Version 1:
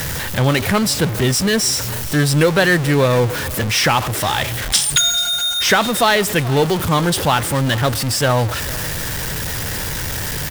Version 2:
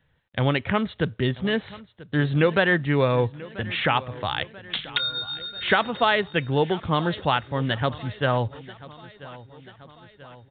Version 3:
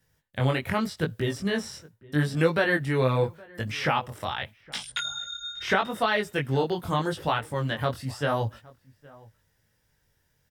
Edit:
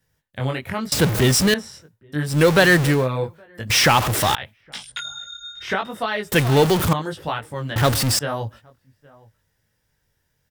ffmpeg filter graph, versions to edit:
-filter_complex "[0:a]asplit=5[a][b][c][d][e];[2:a]asplit=6[f][g][h][i][j][k];[f]atrim=end=0.922[l];[a]atrim=start=0.918:end=1.542[m];[g]atrim=start=1.538:end=2.48[n];[b]atrim=start=2.24:end=3.09[o];[h]atrim=start=2.85:end=3.702[p];[c]atrim=start=3.698:end=4.352[q];[i]atrim=start=4.348:end=6.322[r];[d]atrim=start=6.318:end=6.932[s];[j]atrim=start=6.928:end=7.762[t];[e]atrim=start=7.758:end=8.192[u];[k]atrim=start=8.188[v];[l][m]acrossfade=d=0.004:c1=hsin:c2=hsin[w];[w][n]acrossfade=d=0.004:c1=hsin:c2=hsin[x];[x][o]acrossfade=d=0.24:c1=tri:c2=tri[y];[y][p]acrossfade=d=0.24:c1=tri:c2=tri[z];[z][q]acrossfade=d=0.004:c1=hsin:c2=hsin[aa];[aa][r]acrossfade=d=0.004:c1=hsin:c2=hsin[ab];[ab][s]acrossfade=d=0.004:c1=hsin:c2=hsin[ac];[ac][t]acrossfade=d=0.004:c1=hsin:c2=hsin[ad];[ad][u]acrossfade=d=0.004:c1=hsin:c2=hsin[ae];[ae][v]acrossfade=d=0.004:c1=hsin:c2=hsin"

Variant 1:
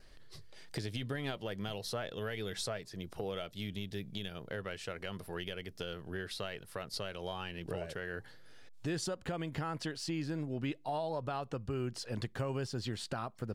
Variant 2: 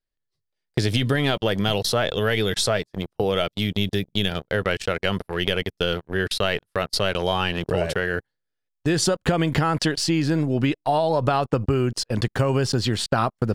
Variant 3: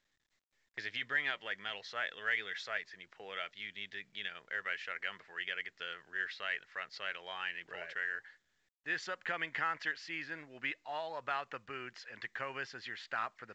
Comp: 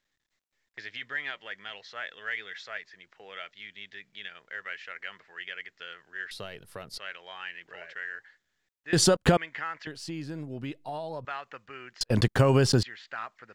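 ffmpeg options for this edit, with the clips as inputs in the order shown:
-filter_complex "[0:a]asplit=2[a][b];[1:a]asplit=2[c][d];[2:a]asplit=5[e][f][g][h][i];[e]atrim=end=6.312[j];[a]atrim=start=6.308:end=6.982[k];[f]atrim=start=6.978:end=8.932[l];[c]atrim=start=8.928:end=9.372[m];[g]atrim=start=9.368:end=9.872[n];[b]atrim=start=9.868:end=11.252[o];[h]atrim=start=11.248:end=12.012[p];[d]atrim=start=12.008:end=12.832[q];[i]atrim=start=12.828[r];[j][k]acrossfade=d=0.004:c1=hsin:c2=hsin[s];[s][l]acrossfade=d=0.004:c1=hsin:c2=hsin[t];[t][m]acrossfade=d=0.004:c1=hsin:c2=hsin[u];[u][n]acrossfade=d=0.004:c1=hsin:c2=hsin[v];[v][o]acrossfade=d=0.004:c1=hsin:c2=hsin[w];[w][p]acrossfade=d=0.004:c1=hsin:c2=hsin[x];[x][q]acrossfade=d=0.004:c1=hsin:c2=hsin[y];[y][r]acrossfade=d=0.004:c1=hsin:c2=hsin"

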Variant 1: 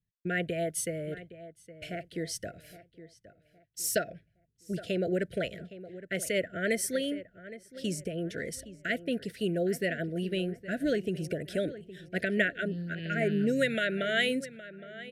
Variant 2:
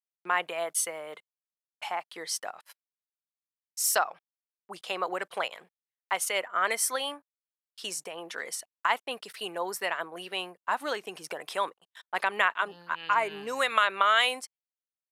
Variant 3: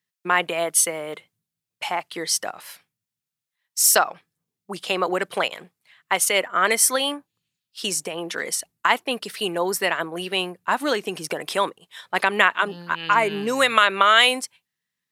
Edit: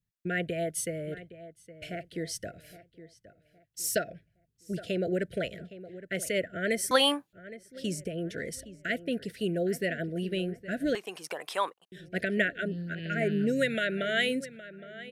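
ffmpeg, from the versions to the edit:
-filter_complex "[0:a]asplit=3[a][b][c];[a]atrim=end=6.912[d];[2:a]atrim=start=6.908:end=7.332[e];[b]atrim=start=7.328:end=10.952[f];[1:a]atrim=start=10.948:end=11.922[g];[c]atrim=start=11.918[h];[d][e]acrossfade=d=0.004:c1=hsin:c2=hsin[i];[i][f]acrossfade=d=0.004:c1=hsin:c2=hsin[j];[j][g]acrossfade=d=0.004:c1=hsin:c2=hsin[k];[k][h]acrossfade=d=0.004:c1=hsin:c2=hsin"

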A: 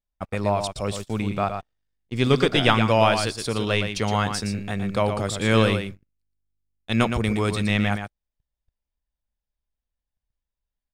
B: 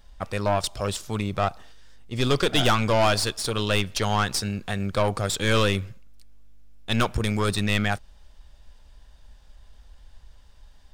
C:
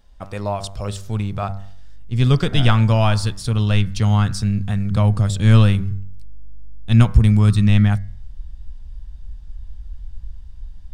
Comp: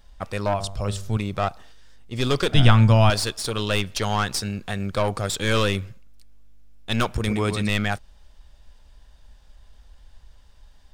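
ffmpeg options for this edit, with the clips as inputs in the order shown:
-filter_complex "[2:a]asplit=2[a][b];[1:a]asplit=4[c][d][e][f];[c]atrim=end=0.542[g];[a]atrim=start=0.538:end=1.172[h];[d]atrim=start=1.168:end=2.542[i];[b]atrim=start=2.538:end=3.102[j];[e]atrim=start=3.098:end=7.272[k];[0:a]atrim=start=7.268:end=7.692[l];[f]atrim=start=7.688[m];[g][h]acrossfade=d=0.004:c1=hsin:c2=hsin[n];[n][i]acrossfade=d=0.004:c1=hsin:c2=hsin[o];[o][j]acrossfade=d=0.004:c1=hsin:c2=hsin[p];[p][k]acrossfade=d=0.004:c1=hsin:c2=hsin[q];[q][l]acrossfade=d=0.004:c1=hsin:c2=hsin[r];[r][m]acrossfade=d=0.004:c1=hsin:c2=hsin"

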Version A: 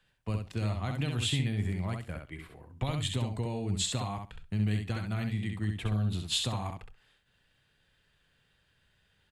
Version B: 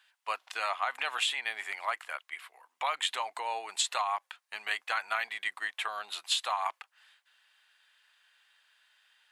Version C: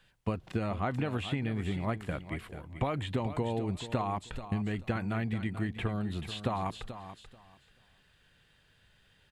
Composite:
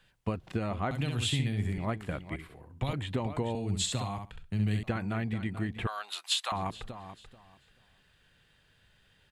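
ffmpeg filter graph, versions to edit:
-filter_complex "[0:a]asplit=3[a][b][c];[2:a]asplit=5[d][e][f][g][h];[d]atrim=end=0.912[i];[a]atrim=start=0.908:end=1.782[j];[e]atrim=start=1.778:end=2.362[k];[b]atrim=start=2.358:end=2.932[l];[f]atrim=start=2.928:end=3.552[m];[c]atrim=start=3.548:end=4.832[n];[g]atrim=start=4.828:end=5.872[o];[1:a]atrim=start=5.868:end=6.522[p];[h]atrim=start=6.518[q];[i][j]acrossfade=d=0.004:c1=hsin:c2=hsin[r];[r][k]acrossfade=d=0.004:c1=hsin:c2=hsin[s];[s][l]acrossfade=d=0.004:c1=hsin:c2=hsin[t];[t][m]acrossfade=d=0.004:c1=hsin:c2=hsin[u];[u][n]acrossfade=d=0.004:c1=hsin:c2=hsin[v];[v][o]acrossfade=d=0.004:c1=hsin:c2=hsin[w];[w][p]acrossfade=d=0.004:c1=hsin:c2=hsin[x];[x][q]acrossfade=d=0.004:c1=hsin:c2=hsin"

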